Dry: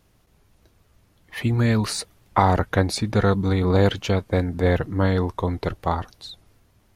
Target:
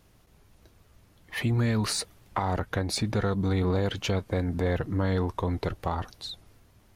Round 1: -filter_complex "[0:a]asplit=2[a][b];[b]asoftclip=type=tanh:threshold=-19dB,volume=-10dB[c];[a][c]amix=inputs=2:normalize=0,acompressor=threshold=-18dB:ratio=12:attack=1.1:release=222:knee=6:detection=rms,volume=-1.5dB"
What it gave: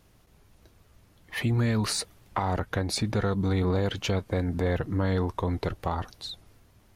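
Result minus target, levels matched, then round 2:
soft clip: distortion -5 dB
-filter_complex "[0:a]asplit=2[a][b];[b]asoftclip=type=tanh:threshold=-27.5dB,volume=-10dB[c];[a][c]amix=inputs=2:normalize=0,acompressor=threshold=-18dB:ratio=12:attack=1.1:release=222:knee=6:detection=rms,volume=-1.5dB"

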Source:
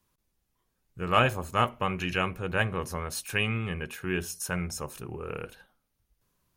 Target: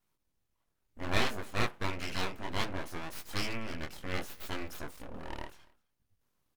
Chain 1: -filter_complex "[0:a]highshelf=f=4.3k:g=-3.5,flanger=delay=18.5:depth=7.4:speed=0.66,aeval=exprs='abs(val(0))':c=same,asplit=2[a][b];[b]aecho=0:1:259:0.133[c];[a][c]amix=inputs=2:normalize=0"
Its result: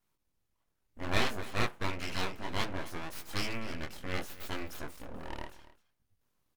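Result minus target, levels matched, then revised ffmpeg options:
echo-to-direct +8.5 dB
-filter_complex "[0:a]highshelf=f=4.3k:g=-3.5,flanger=delay=18.5:depth=7.4:speed=0.66,aeval=exprs='abs(val(0))':c=same,asplit=2[a][b];[b]aecho=0:1:259:0.0501[c];[a][c]amix=inputs=2:normalize=0"

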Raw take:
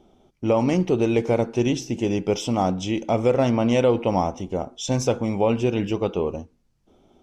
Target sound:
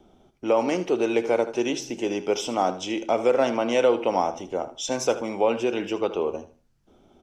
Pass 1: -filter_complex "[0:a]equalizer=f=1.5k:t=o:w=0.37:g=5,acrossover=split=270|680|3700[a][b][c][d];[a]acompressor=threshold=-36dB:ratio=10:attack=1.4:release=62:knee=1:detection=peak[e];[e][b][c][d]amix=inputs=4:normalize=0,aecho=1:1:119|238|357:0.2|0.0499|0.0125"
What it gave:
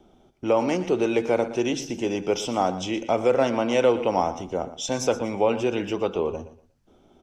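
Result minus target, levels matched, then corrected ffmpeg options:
compressor: peak gain reduction -11 dB; echo 41 ms late
-filter_complex "[0:a]equalizer=f=1.5k:t=o:w=0.37:g=5,acrossover=split=270|680|3700[a][b][c][d];[a]acompressor=threshold=-48dB:ratio=10:attack=1.4:release=62:knee=1:detection=peak[e];[e][b][c][d]amix=inputs=4:normalize=0,aecho=1:1:78|156|234:0.2|0.0499|0.0125"

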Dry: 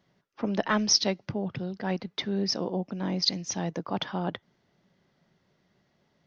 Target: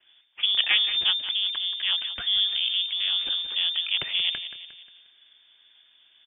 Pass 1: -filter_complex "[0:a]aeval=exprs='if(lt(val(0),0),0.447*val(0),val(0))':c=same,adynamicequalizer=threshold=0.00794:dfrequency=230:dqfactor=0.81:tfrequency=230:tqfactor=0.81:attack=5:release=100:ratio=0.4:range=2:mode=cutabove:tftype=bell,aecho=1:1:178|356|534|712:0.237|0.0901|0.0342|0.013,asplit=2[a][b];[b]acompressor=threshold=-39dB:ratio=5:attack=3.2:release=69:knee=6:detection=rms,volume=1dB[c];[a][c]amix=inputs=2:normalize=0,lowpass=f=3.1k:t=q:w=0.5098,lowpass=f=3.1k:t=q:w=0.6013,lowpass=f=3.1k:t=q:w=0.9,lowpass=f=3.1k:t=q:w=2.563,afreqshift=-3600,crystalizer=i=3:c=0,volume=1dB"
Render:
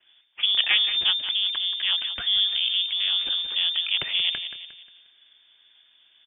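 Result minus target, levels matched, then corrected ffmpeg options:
compressor: peak gain reduction -9 dB
-filter_complex "[0:a]aeval=exprs='if(lt(val(0),0),0.447*val(0),val(0))':c=same,adynamicequalizer=threshold=0.00794:dfrequency=230:dqfactor=0.81:tfrequency=230:tqfactor=0.81:attack=5:release=100:ratio=0.4:range=2:mode=cutabove:tftype=bell,aecho=1:1:178|356|534|712:0.237|0.0901|0.0342|0.013,asplit=2[a][b];[b]acompressor=threshold=-50dB:ratio=5:attack=3.2:release=69:knee=6:detection=rms,volume=1dB[c];[a][c]amix=inputs=2:normalize=0,lowpass=f=3.1k:t=q:w=0.5098,lowpass=f=3.1k:t=q:w=0.6013,lowpass=f=3.1k:t=q:w=0.9,lowpass=f=3.1k:t=q:w=2.563,afreqshift=-3600,crystalizer=i=3:c=0,volume=1dB"

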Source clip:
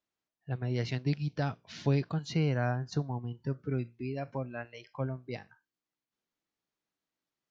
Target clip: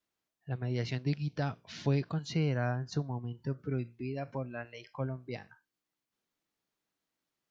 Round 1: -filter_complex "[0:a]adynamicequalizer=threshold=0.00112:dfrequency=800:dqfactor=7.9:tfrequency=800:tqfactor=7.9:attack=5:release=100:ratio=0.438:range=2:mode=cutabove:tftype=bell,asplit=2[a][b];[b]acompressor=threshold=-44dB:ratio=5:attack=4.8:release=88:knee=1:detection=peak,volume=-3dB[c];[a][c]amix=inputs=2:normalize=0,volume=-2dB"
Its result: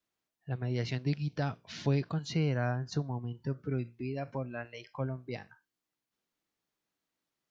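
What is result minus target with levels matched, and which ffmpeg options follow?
compressor: peak gain reduction -5.5 dB
-filter_complex "[0:a]adynamicequalizer=threshold=0.00112:dfrequency=800:dqfactor=7.9:tfrequency=800:tqfactor=7.9:attack=5:release=100:ratio=0.438:range=2:mode=cutabove:tftype=bell,asplit=2[a][b];[b]acompressor=threshold=-51dB:ratio=5:attack=4.8:release=88:knee=1:detection=peak,volume=-3dB[c];[a][c]amix=inputs=2:normalize=0,volume=-2dB"

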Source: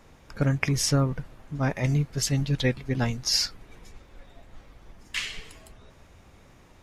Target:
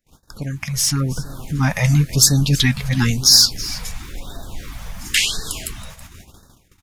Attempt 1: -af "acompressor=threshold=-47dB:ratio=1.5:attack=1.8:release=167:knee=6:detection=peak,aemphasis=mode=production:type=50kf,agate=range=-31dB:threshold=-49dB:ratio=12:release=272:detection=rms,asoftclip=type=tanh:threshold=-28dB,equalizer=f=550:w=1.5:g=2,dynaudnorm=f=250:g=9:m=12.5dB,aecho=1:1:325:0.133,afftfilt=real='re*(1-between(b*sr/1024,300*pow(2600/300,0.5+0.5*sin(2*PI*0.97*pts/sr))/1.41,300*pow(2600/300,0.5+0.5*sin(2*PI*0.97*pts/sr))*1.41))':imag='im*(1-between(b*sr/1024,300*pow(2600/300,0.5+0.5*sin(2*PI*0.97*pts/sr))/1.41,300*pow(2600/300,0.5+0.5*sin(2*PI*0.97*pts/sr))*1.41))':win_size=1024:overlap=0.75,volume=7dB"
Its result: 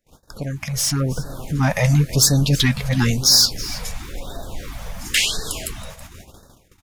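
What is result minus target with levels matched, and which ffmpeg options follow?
500 Hz band +7.0 dB; soft clip: distortion +8 dB
-af "acompressor=threshold=-47dB:ratio=1.5:attack=1.8:release=167:knee=6:detection=peak,aemphasis=mode=production:type=50kf,agate=range=-31dB:threshold=-49dB:ratio=12:release=272:detection=rms,asoftclip=type=tanh:threshold=-21.5dB,equalizer=f=550:w=1.5:g=-5.5,dynaudnorm=f=250:g=9:m=12.5dB,aecho=1:1:325:0.133,afftfilt=real='re*(1-between(b*sr/1024,300*pow(2600/300,0.5+0.5*sin(2*PI*0.97*pts/sr))/1.41,300*pow(2600/300,0.5+0.5*sin(2*PI*0.97*pts/sr))*1.41))':imag='im*(1-between(b*sr/1024,300*pow(2600/300,0.5+0.5*sin(2*PI*0.97*pts/sr))/1.41,300*pow(2600/300,0.5+0.5*sin(2*PI*0.97*pts/sr))*1.41))':win_size=1024:overlap=0.75,volume=7dB"

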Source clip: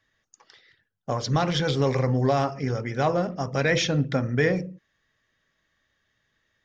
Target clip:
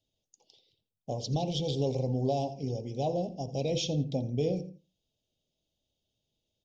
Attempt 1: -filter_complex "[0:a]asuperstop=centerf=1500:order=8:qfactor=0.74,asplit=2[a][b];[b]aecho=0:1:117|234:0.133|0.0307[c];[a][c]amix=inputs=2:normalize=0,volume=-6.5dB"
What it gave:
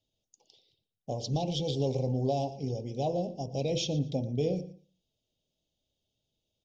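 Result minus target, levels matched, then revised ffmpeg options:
echo 33 ms late
-filter_complex "[0:a]asuperstop=centerf=1500:order=8:qfactor=0.74,asplit=2[a][b];[b]aecho=0:1:84|168:0.133|0.0307[c];[a][c]amix=inputs=2:normalize=0,volume=-6.5dB"

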